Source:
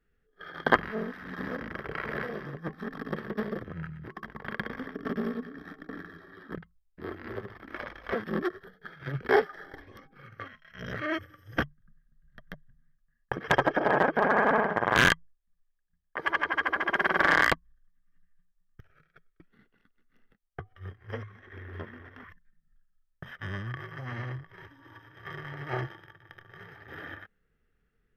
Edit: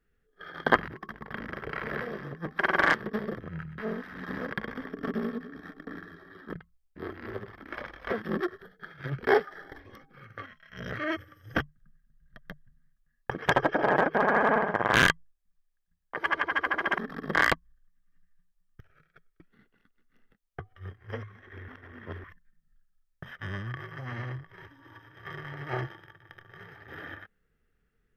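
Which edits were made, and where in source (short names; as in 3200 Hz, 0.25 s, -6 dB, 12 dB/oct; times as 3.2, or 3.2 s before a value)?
0.88–1.62 swap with 4.02–4.54
2.81–3.18 swap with 17–17.35
21.68–22.24 reverse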